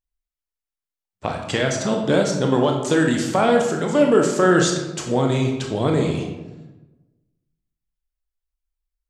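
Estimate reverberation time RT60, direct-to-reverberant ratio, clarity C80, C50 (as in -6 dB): 1.1 s, 1.0 dB, 7.0 dB, 4.5 dB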